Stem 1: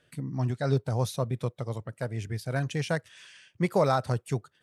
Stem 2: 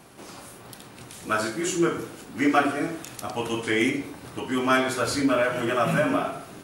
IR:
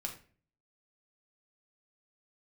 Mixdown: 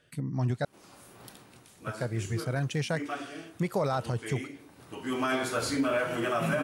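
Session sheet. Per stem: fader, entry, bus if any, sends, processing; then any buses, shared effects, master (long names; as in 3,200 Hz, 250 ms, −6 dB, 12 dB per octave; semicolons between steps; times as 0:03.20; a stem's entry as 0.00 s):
+1.0 dB, 0.00 s, muted 0:00.65–0:01.82, no send, no processing
−4.5 dB, 0.55 s, no send, automatic ducking −11 dB, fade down 0.55 s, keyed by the first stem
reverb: not used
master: brickwall limiter −19 dBFS, peak gain reduction 7.5 dB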